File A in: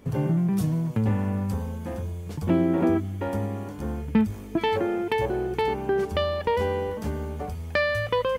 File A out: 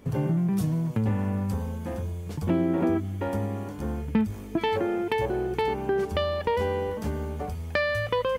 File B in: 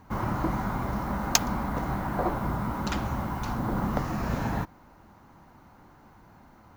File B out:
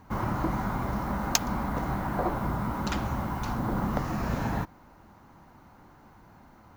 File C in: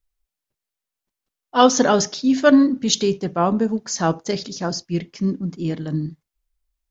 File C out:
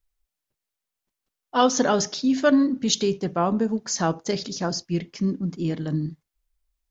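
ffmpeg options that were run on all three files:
-af "acompressor=threshold=-24dB:ratio=1.5"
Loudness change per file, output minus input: -1.5, -0.5, -4.0 LU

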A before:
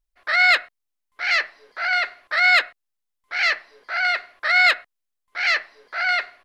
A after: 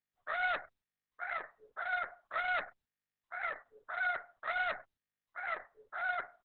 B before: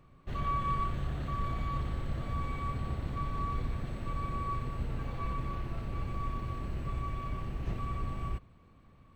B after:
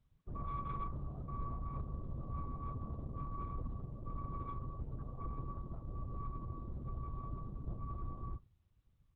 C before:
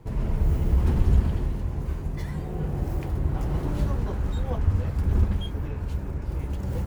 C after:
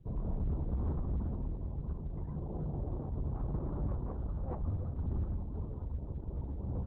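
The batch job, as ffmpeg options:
-af "lowpass=f=1.4k:w=0.5412,lowpass=f=1.4k:w=1.3066,afftdn=nr=23:nf=-44,aresample=16000,asoftclip=type=tanh:threshold=-23dB,aresample=44100,volume=-6dB" -ar 48000 -c:a libopus -b:a 6k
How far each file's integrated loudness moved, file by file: -18.0, -8.0, -11.0 LU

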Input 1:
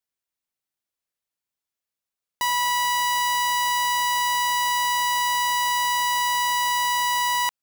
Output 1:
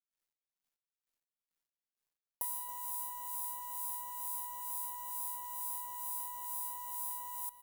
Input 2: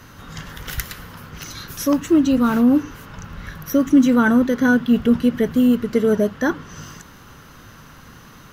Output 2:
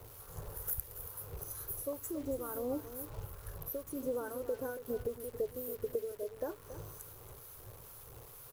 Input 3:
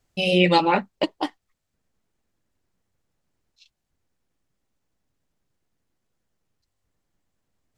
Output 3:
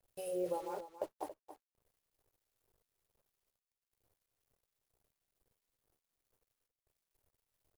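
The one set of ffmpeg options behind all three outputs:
-filter_complex "[0:a]firequalizer=gain_entry='entry(120,0);entry(200,-23);entry(410,5);entry(2200,-24);entry(3500,-26);entry(10000,12)':delay=0.05:min_phase=1,acompressor=threshold=-26dB:ratio=12,acrossover=split=1200[a][b];[a]aeval=exprs='val(0)*(1-0.7/2+0.7/2*cos(2*PI*2.2*n/s))':c=same[c];[b]aeval=exprs='val(0)*(1-0.7/2-0.7/2*cos(2*PI*2.2*n/s))':c=same[d];[c][d]amix=inputs=2:normalize=0,acrusher=bits=9:dc=4:mix=0:aa=0.000001,asplit=2[e][f];[f]aecho=0:1:278:0.251[g];[e][g]amix=inputs=2:normalize=0,volume=-5.5dB"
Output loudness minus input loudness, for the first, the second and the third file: -17.0, -23.0, -20.0 LU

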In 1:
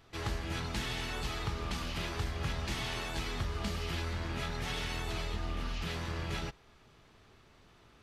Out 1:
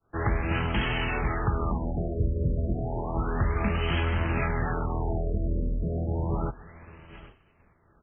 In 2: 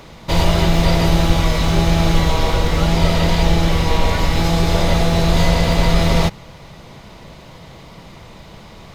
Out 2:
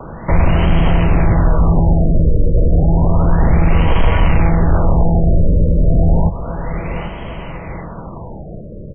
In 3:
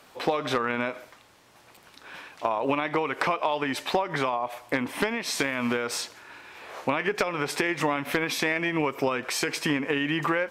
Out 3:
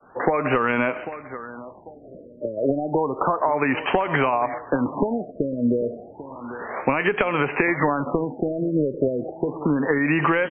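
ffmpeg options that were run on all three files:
-filter_complex "[0:a]aecho=1:1:793|1586|2379:0.126|0.0441|0.0154,aeval=exprs='0.944*sin(PI/2*3.16*val(0)/0.944)':c=same,agate=range=-33dB:threshold=-35dB:ratio=3:detection=peak,acrossover=split=130[a][b];[b]acompressor=threshold=-12dB:ratio=6[c];[a][c]amix=inputs=2:normalize=0,afftfilt=real='re*lt(b*sr/1024,620*pow(3300/620,0.5+0.5*sin(2*PI*0.31*pts/sr)))':imag='im*lt(b*sr/1024,620*pow(3300/620,0.5+0.5*sin(2*PI*0.31*pts/sr)))':win_size=1024:overlap=0.75,volume=-4dB"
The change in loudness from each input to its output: +8.0, +1.5, +4.5 LU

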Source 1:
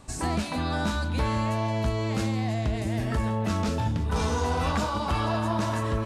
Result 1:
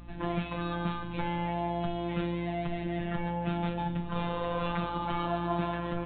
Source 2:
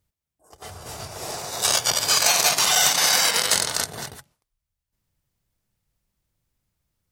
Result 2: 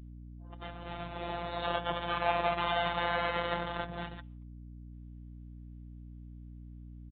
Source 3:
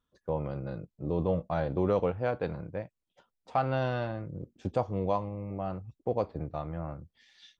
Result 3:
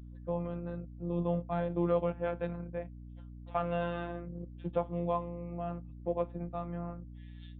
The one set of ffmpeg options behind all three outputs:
-filter_complex "[0:a]acrossover=split=120|1400[a][b][c];[c]acompressor=threshold=-31dB:ratio=4[d];[a][b][d]amix=inputs=3:normalize=0,afftfilt=real='hypot(re,im)*cos(PI*b)':imag='0':win_size=1024:overlap=0.75,aeval=exprs='val(0)+0.00501*(sin(2*PI*60*n/s)+sin(2*PI*2*60*n/s)/2+sin(2*PI*3*60*n/s)/3+sin(2*PI*4*60*n/s)/4+sin(2*PI*5*60*n/s)/5)':c=same,aresample=8000,aresample=44100"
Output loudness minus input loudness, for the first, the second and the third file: -5.5, -15.5, -3.0 LU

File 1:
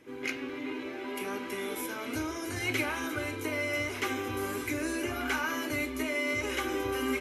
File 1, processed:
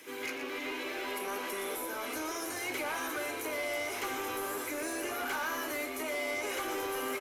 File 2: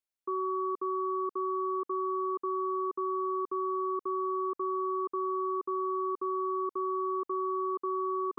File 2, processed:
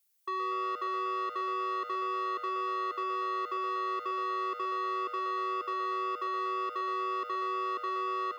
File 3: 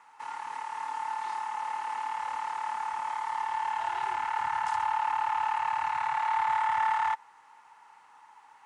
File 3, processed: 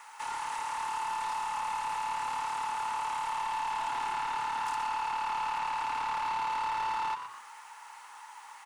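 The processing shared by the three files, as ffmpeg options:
-filter_complex "[0:a]aemphasis=mode=production:type=75fm,bandreject=f=60:t=h:w=6,bandreject=f=120:t=h:w=6,bandreject=f=180:t=h:w=6,bandreject=f=240:t=h:w=6,acrossover=split=300|1200[a][b][c];[a]acompressor=threshold=-49dB:ratio=4[d];[b]acompressor=threshold=-30dB:ratio=4[e];[c]acompressor=threshold=-44dB:ratio=4[f];[d][e][f]amix=inputs=3:normalize=0,asplit=2[g][h];[h]highpass=f=720:p=1,volume=20dB,asoftclip=type=tanh:threshold=-19.5dB[i];[g][i]amix=inputs=2:normalize=0,lowpass=f=6.8k:p=1,volume=-6dB,asplit=2[j][k];[k]asplit=4[l][m][n][o];[l]adelay=119,afreqshift=110,volume=-9.5dB[p];[m]adelay=238,afreqshift=220,volume=-17.7dB[q];[n]adelay=357,afreqshift=330,volume=-25.9dB[r];[o]adelay=476,afreqshift=440,volume=-34dB[s];[p][q][r][s]amix=inputs=4:normalize=0[t];[j][t]amix=inputs=2:normalize=0,volume=-7dB"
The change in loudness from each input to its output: -2.5, -1.0, -2.5 LU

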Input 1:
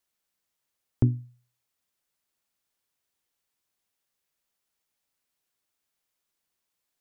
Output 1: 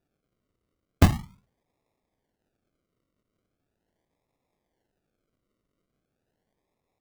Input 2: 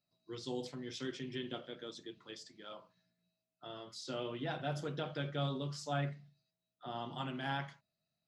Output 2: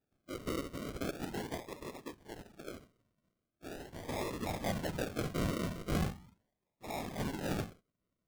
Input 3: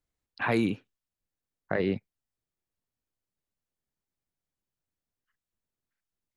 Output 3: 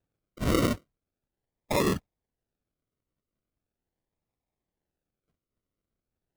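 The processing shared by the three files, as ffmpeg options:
-af "afftfilt=real='hypot(re,im)*cos(2*PI*random(0))':imag='hypot(re,im)*sin(2*PI*random(1))':win_size=512:overlap=0.75,acrusher=samples=41:mix=1:aa=0.000001:lfo=1:lforange=24.6:lforate=0.4,volume=8.5dB"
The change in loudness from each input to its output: +5.0, +2.5, +1.5 LU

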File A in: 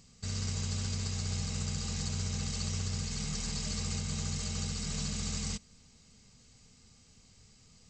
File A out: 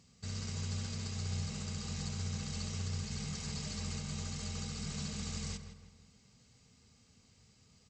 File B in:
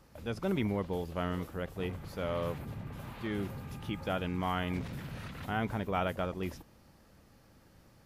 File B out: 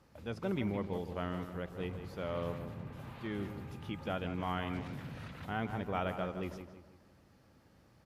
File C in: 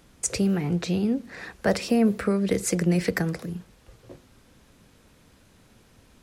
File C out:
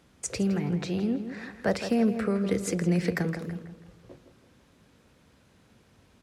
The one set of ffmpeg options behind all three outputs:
-filter_complex "[0:a]highpass=55,highshelf=f=8k:g=-8,asplit=2[a][b];[b]adelay=163,lowpass=f=3k:p=1,volume=-9dB,asplit=2[c][d];[d]adelay=163,lowpass=f=3k:p=1,volume=0.43,asplit=2[e][f];[f]adelay=163,lowpass=f=3k:p=1,volume=0.43,asplit=2[g][h];[h]adelay=163,lowpass=f=3k:p=1,volume=0.43,asplit=2[i][j];[j]adelay=163,lowpass=f=3k:p=1,volume=0.43[k];[a][c][e][g][i][k]amix=inputs=6:normalize=0,volume=-3.5dB"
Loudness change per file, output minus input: -4.5, -3.0, -3.5 LU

